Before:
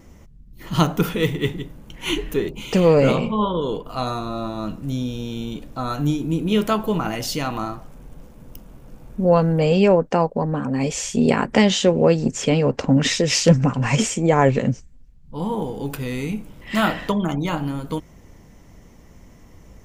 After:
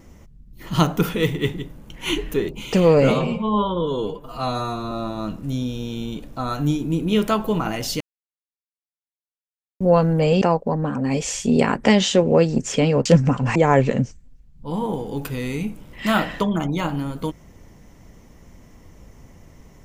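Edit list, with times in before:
0:03.10–0:04.31: time-stretch 1.5×
0:07.40–0:09.20: silence
0:09.81–0:10.11: remove
0:12.75–0:13.42: remove
0:13.92–0:14.24: remove

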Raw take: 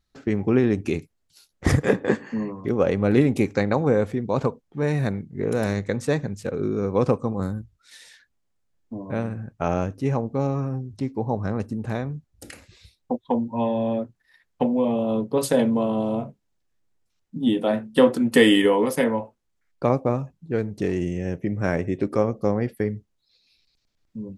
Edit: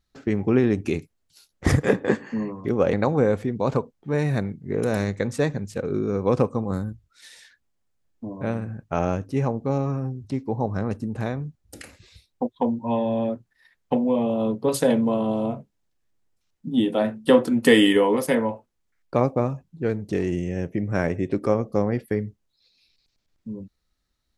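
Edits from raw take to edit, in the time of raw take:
0:02.93–0:03.62: remove

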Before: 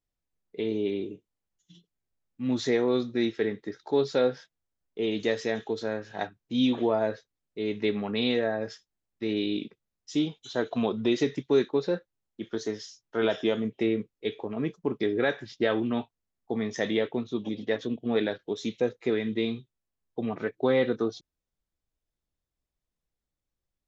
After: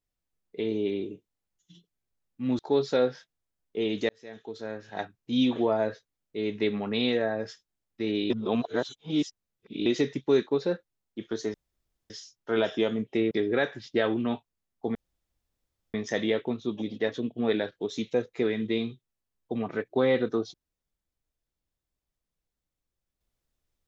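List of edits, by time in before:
0:02.59–0:03.81: remove
0:05.31–0:06.39: fade in
0:09.52–0:11.08: reverse
0:12.76: splice in room tone 0.56 s
0:13.97–0:14.97: remove
0:16.61: splice in room tone 0.99 s

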